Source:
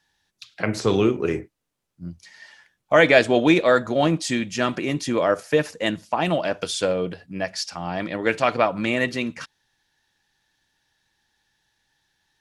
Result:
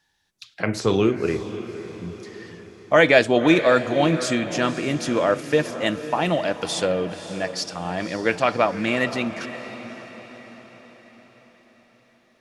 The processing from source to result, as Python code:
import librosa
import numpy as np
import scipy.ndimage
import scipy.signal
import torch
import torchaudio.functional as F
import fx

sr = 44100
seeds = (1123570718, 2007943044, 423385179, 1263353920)

y = fx.echo_diffused(x, sr, ms=541, feedback_pct=52, wet_db=-12)